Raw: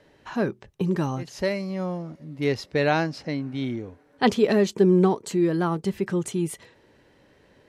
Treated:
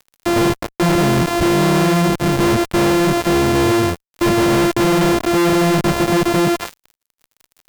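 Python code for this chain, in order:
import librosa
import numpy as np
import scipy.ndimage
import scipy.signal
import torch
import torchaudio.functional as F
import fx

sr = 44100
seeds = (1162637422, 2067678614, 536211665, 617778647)

y = np.r_[np.sort(x[:len(x) // 128 * 128].reshape(-1, 128), axis=1).ravel(), x[len(x) // 128 * 128:]]
y = fx.fuzz(y, sr, gain_db=47.0, gate_db=-48.0)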